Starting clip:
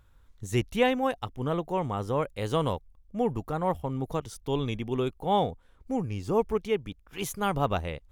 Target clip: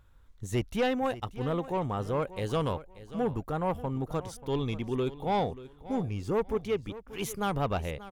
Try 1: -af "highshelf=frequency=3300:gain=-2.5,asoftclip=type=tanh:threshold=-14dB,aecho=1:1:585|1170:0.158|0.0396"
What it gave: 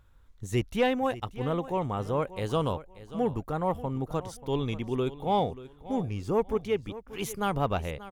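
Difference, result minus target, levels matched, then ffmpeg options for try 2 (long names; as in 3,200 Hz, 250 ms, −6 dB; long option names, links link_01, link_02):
soft clipping: distortion −9 dB
-af "highshelf=frequency=3300:gain=-2.5,asoftclip=type=tanh:threshold=-21dB,aecho=1:1:585|1170:0.158|0.0396"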